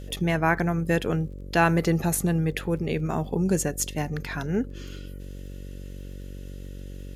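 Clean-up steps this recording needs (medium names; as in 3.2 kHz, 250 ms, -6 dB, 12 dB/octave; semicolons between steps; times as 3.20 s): de-click; de-hum 47.1 Hz, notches 12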